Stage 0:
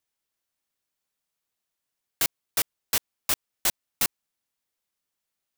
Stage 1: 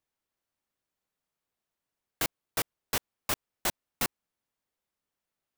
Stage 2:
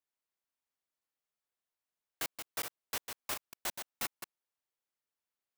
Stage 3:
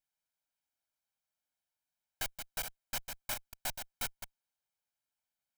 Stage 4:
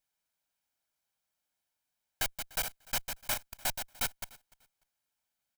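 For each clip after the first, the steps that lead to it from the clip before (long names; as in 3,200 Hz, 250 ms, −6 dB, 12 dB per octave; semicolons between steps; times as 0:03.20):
high-shelf EQ 2,100 Hz −10 dB; level +2.5 dB
delay that plays each chunk backwards 101 ms, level −6.5 dB; low-shelf EQ 320 Hz −9.5 dB; level −7 dB
lower of the sound and its delayed copy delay 1.3 ms; level +1.5 dB
repeating echo 296 ms, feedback 23%, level −23 dB; level +5 dB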